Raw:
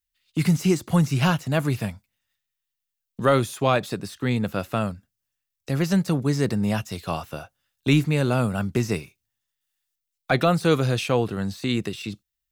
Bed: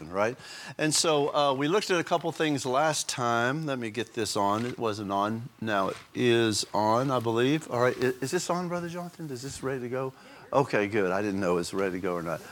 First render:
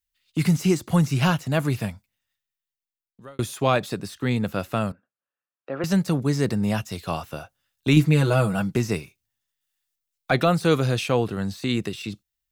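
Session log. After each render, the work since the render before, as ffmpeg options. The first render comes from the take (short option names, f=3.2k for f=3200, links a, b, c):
-filter_complex "[0:a]asettb=1/sr,asplit=3[a][b][c];[a]atrim=end=4.924[d];[b]atrim=start=4.92:end=5.84,asetpts=PTS-STARTPTS,afade=t=in:d=0.004:c=qsin,afade=t=out:st=0.916:d=0.004:c=qsin,highpass=370,equalizer=f=550:t=q:w=4:g=5,equalizer=f=1.3k:t=q:w=4:g=4,equalizer=f=2.1k:t=q:w=4:g=-9,lowpass=f=2.3k:w=0.5412,lowpass=f=2.3k:w=1.3066[e];[c]atrim=start=5.836[f];[d][e]acrossfade=d=0.004:c1=hsin:c2=qsin[g];[g][f]acrossfade=d=0.004:c1=qsin:c2=hsin,asettb=1/sr,asplit=3[h][i][j];[h]atrim=end=7.964[k];[i]atrim=start=7.96:end=8.76,asetpts=PTS-STARTPTS,afade=t=in:d=0.004:c=qsin,afade=t=out:st=0.796:d=0.004:c=qsin,aecho=1:1:6.2:0.77,atrim=end_sample=35280[l];[j]atrim=start=8.756[m];[k][l]acrossfade=d=0.004:c1=hsin:c2=qsin[n];[n][m]acrossfade=d=0.004:c1=qsin:c2=hsin,asplit=2[o][p];[o]atrim=end=3.39,asetpts=PTS-STARTPTS,afade=t=out:st=1.85:d=1.54[q];[p]atrim=start=3.39,asetpts=PTS-STARTPTS,afade=t=in:d=0.004:c=hsin[r];[q][r]concat=n=2:v=0:a=1"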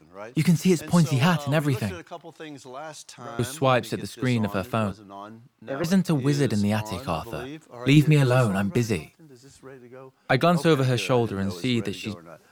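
-filter_complex "[1:a]volume=-12.5dB[a];[0:a][a]amix=inputs=2:normalize=0"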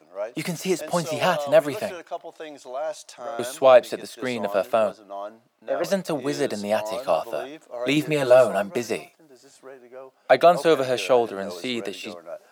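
-af "highpass=330,equalizer=f=620:t=o:w=0.44:g=13"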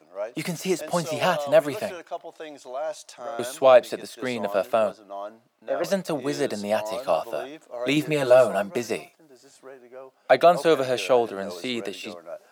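-af "volume=-1dB"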